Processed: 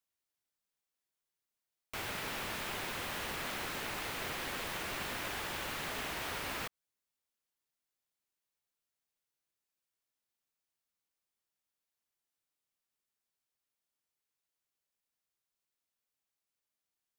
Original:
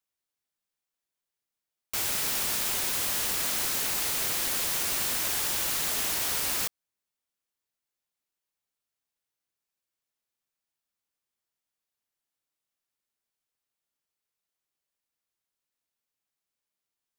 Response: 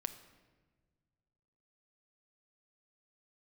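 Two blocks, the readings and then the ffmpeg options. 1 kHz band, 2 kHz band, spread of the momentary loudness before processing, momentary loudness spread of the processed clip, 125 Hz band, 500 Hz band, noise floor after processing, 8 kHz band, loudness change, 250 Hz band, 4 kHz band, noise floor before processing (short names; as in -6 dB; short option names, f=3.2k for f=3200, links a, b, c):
-2.5 dB, -3.5 dB, 2 LU, 2 LU, -2.5 dB, -2.5 dB, under -85 dBFS, -17.5 dB, -12.0 dB, -2.5 dB, -9.5 dB, under -85 dBFS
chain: -filter_complex "[0:a]acrossover=split=3200[a][b];[b]acompressor=threshold=-45dB:ratio=4:attack=1:release=60[c];[a][c]amix=inputs=2:normalize=0,volume=-2.5dB"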